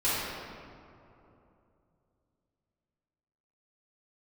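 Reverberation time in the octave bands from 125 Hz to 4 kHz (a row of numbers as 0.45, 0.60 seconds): 3.7, 3.2, 3.1, 2.8, 1.9, 1.3 seconds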